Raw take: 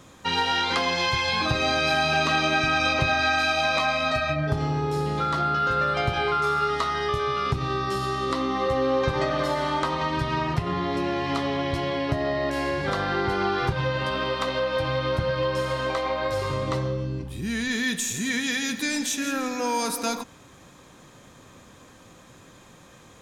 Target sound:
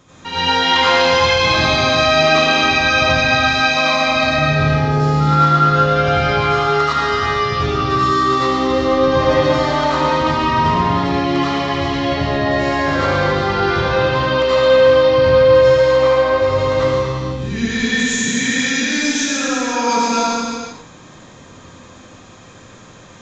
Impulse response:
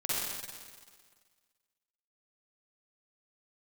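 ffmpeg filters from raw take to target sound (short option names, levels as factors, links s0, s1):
-filter_complex "[0:a]asettb=1/sr,asplit=3[s0][s1][s2];[s0]atrim=end=15.854[s3];[s1]atrim=start=15.85:end=16.48,asetpts=PTS-STARTPTS,afade=t=in:d=0.004:c=qsin,afade=t=out:st=0.626:d=0.004:c=qsin,highshelf=f=4100:g=-9.5[s4];[s2]atrim=start=16.476[s5];[s3][s4]acrossfade=d=0.004:c1=hsin:c2=qsin[s6];[s6][s5]acrossfade=d=0.004:c1=qsin:c2=hsin[s7];[1:a]atrim=start_sample=2205,afade=t=out:st=0.43:d=0.01,atrim=end_sample=19404,asetrate=26019,aresample=44100[s8];[s7][s8]afir=irnorm=-1:irlink=0,aresample=16000,aresample=44100,volume=0.794"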